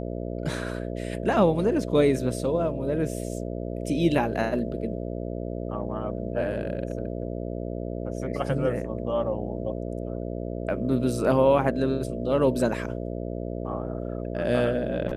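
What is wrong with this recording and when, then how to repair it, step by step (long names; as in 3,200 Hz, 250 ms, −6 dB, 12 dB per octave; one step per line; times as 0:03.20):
mains buzz 60 Hz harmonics 11 −32 dBFS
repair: hum removal 60 Hz, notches 11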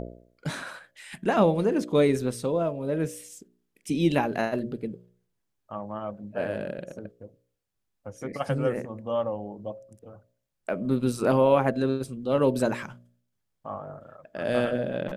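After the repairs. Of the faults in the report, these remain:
none of them is left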